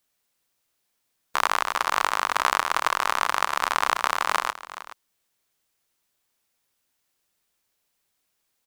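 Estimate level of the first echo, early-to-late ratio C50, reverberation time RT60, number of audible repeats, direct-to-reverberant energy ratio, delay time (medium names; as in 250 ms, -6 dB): -15.0 dB, no reverb, no reverb, 1, no reverb, 423 ms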